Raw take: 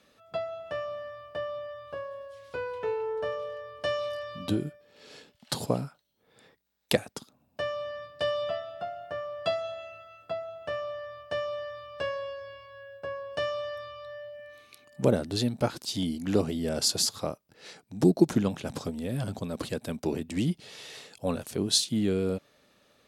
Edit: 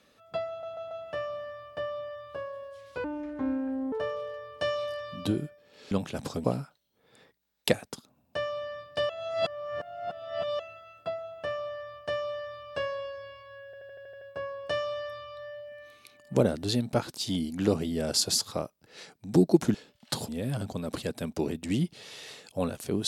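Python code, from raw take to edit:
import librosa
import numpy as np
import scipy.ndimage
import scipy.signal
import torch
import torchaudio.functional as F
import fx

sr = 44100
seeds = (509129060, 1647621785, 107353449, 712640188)

y = fx.edit(x, sr, fx.stutter(start_s=0.49, slice_s=0.14, count=4),
    fx.speed_span(start_s=2.62, length_s=0.53, speed=0.6),
    fx.swap(start_s=5.14, length_s=0.54, other_s=18.42, other_length_s=0.53),
    fx.reverse_span(start_s=8.33, length_s=1.5),
    fx.stutter(start_s=12.89, slice_s=0.08, count=8), tone=tone)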